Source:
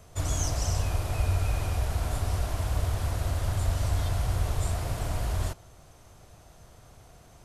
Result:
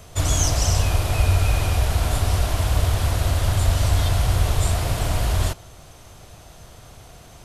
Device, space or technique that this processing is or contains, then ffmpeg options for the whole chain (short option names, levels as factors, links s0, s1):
presence and air boost: -af "equalizer=f=3300:t=o:w=1.2:g=4.5,highshelf=f=9900:g=3.5,volume=2.51"